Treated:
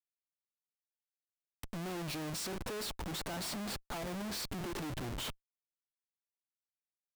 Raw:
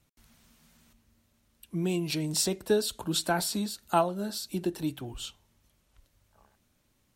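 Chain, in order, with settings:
high-shelf EQ 6,400 Hz −3 dB
0:02.84–0:04.07: downward compressor 6 to 1, threshold −35 dBFS, peak gain reduction 15.5 dB
comparator with hysteresis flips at −44 dBFS
level −4 dB

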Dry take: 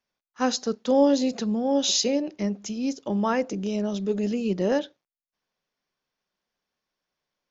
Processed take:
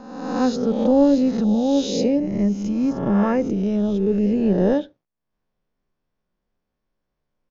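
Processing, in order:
peak hold with a rise ahead of every peak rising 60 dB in 1.08 s
spectral tilt −4 dB per octave
downsampling to 16,000 Hz
level −2 dB

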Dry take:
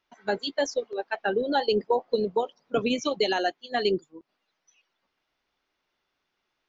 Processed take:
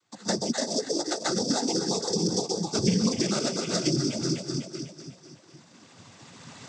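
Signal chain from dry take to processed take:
pitch glide at a constant tempo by −6 semitones starting unshifted
camcorder AGC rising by 11 dB per second
delay that swaps between a low-pass and a high-pass 125 ms, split 860 Hz, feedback 72%, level −5 dB
bad sample-rate conversion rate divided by 8×, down filtered, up zero stuff
cochlear-implant simulation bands 16
high-shelf EQ 5,000 Hz −4.5 dB
downward compressor, threshold −28 dBFS, peak gain reduction 12 dB
bass and treble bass +15 dB, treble −3 dB
level +3 dB

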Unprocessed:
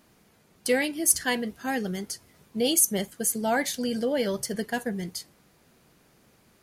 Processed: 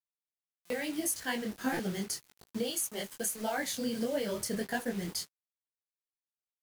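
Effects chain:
0:02.70–0:03.58: low-shelf EQ 320 Hz −11 dB
downward compressor 16 to 1, threshold −32 dBFS, peak gain reduction 17.5 dB
bit reduction 8 bits
buffer that repeats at 0:00.65/0:01.72, samples 256, times 8
micro pitch shift up and down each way 58 cents
level +6 dB

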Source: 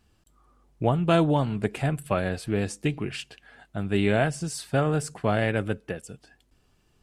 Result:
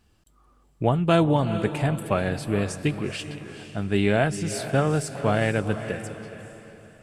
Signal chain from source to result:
feedback delay with all-pass diffusion 454 ms, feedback 41%, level −11 dB
level +1.5 dB

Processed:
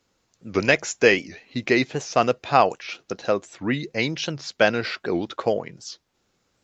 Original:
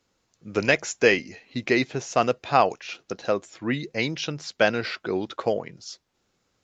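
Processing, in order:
wow of a warped record 78 rpm, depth 160 cents
level +2 dB

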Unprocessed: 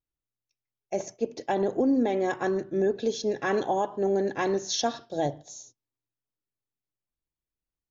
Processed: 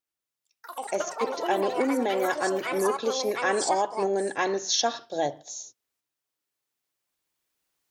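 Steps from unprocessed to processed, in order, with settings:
camcorder AGC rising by 5.1 dB per second
high-pass filter 660 Hz 6 dB per octave
delay with pitch and tempo change per echo 84 ms, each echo +5 semitones, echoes 3, each echo −6 dB
level +4.5 dB

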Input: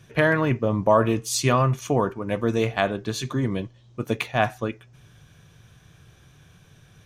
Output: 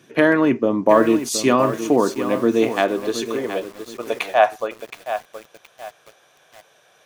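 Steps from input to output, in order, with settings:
high-pass filter sweep 280 Hz → 600 Hz, 0:02.64–0:03.81
feedback echo at a low word length 721 ms, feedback 35%, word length 6 bits, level −10 dB
level +2 dB

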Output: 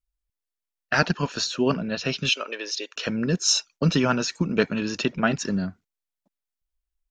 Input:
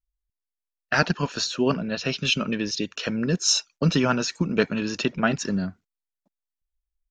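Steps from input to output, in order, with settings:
0:02.29–0:02.96: inverse Chebyshev high-pass filter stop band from 160 Hz, stop band 50 dB

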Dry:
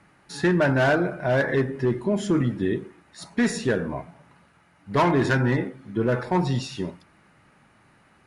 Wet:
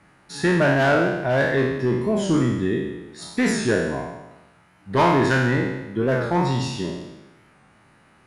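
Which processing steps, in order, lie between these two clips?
peak hold with a decay on every bin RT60 1.04 s
wow of a warped record 45 rpm, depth 100 cents

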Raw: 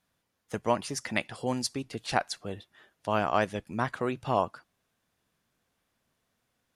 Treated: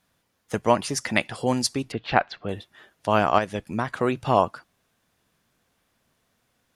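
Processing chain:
0:01.92–0:02.49: low-pass filter 3,400 Hz 24 dB per octave
0:03.38–0:03.97: downward compressor 6 to 1, threshold −29 dBFS, peak gain reduction 7.5 dB
level +7 dB

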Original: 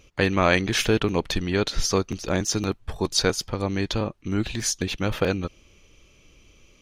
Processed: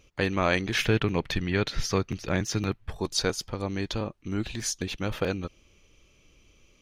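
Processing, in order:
0:00.73–0:02.90: graphic EQ with 10 bands 125 Hz +7 dB, 2,000 Hz +6 dB, 8,000 Hz −5 dB
level −5 dB

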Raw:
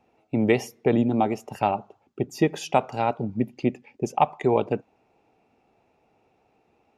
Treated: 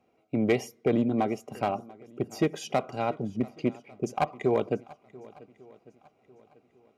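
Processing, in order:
asymmetric clip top −15.5 dBFS, bottom −10 dBFS
notch comb filter 880 Hz
feedback echo with a long and a short gap by turns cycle 1,148 ms, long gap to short 1.5 to 1, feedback 31%, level −22 dB
level −3 dB

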